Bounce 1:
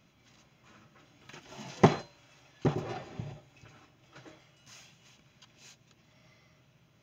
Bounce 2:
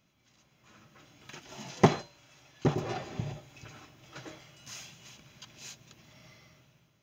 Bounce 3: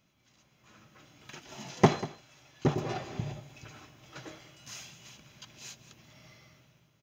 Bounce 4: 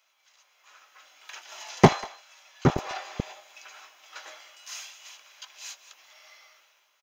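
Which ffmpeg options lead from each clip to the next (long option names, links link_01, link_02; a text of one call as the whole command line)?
ffmpeg -i in.wav -af "highshelf=frequency=5200:gain=6,dynaudnorm=framelen=340:gausssize=5:maxgain=13dB,volume=-7dB" out.wav
ffmpeg -i in.wav -af "aecho=1:1:191:0.15" out.wav
ffmpeg -i in.wav -filter_complex "[0:a]acrossover=split=670|1600[link_01][link_02][link_03];[link_01]acrusher=bits=3:mix=0:aa=0.5[link_04];[link_02]asplit=2[link_05][link_06];[link_06]adelay=21,volume=-4dB[link_07];[link_05][link_07]amix=inputs=2:normalize=0[link_08];[link_04][link_08][link_03]amix=inputs=3:normalize=0,volume=5.5dB" out.wav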